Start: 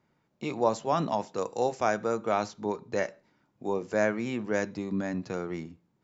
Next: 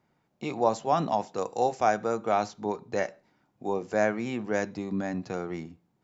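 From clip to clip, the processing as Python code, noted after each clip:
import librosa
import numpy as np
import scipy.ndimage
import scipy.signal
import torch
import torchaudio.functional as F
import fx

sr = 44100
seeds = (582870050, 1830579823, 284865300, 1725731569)

y = fx.peak_eq(x, sr, hz=750.0, db=7.0, octaves=0.21)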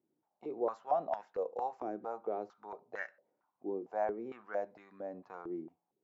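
y = fx.filter_held_bandpass(x, sr, hz=4.4, low_hz=330.0, high_hz=1600.0)
y = y * librosa.db_to_amplitude(-1.5)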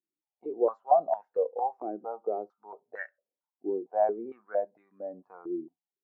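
y = fx.spectral_expand(x, sr, expansion=1.5)
y = y * librosa.db_to_amplitude(8.5)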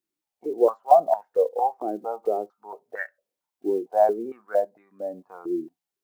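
y = fx.block_float(x, sr, bits=7)
y = y * librosa.db_to_amplitude(6.5)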